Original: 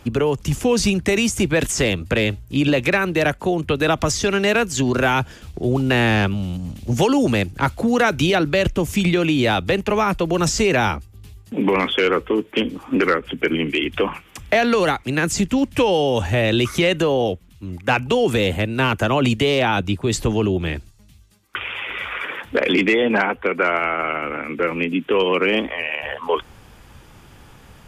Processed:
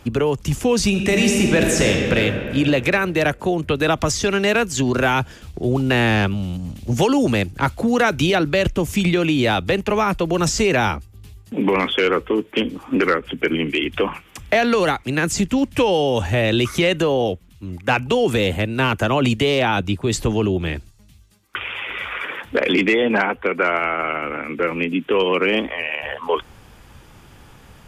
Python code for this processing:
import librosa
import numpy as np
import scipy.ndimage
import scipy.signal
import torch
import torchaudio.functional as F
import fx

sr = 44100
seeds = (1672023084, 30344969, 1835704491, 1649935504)

y = fx.reverb_throw(x, sr, start_s=0.88, length_s=1.29, rt60_s=2.6, drr_db=0.5)